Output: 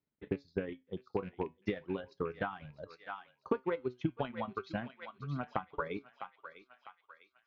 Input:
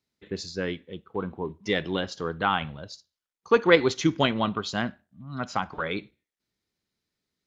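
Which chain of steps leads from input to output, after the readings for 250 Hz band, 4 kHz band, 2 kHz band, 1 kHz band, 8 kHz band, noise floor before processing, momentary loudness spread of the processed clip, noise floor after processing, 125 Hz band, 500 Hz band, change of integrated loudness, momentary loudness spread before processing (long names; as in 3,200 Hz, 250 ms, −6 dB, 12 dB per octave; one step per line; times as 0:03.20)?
−10.5 dB, −22.5 dB, −15.0 dB, −11.5 dB, can't be measured, below −85 dBFS, 14 LU, −79 dBFS, −8.5 dB, −11.5 dB, −13.0 dB, 17 LU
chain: loose part that buzzes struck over −34 dBFS, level −26 dBFS
reverb reduction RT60 1.4 s
high-frequency loss of the air 220 metres
on a send: feedback echo with a high-pass in the loop 651 ms, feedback 55%, high-pass 1,000 Hz, level −12.5 dB
on the sum: downward compressor 6 to 1, threshold −32 dBFS, peak gain reduction 17.5 dB
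transient designer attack +7 dB, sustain −7 dB
high-shelf EQ 2,800 Hz −11.5 dB
flanger 0.36 Hz, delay 6.6 ms, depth 1.7 ms, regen +76%
level +1 dB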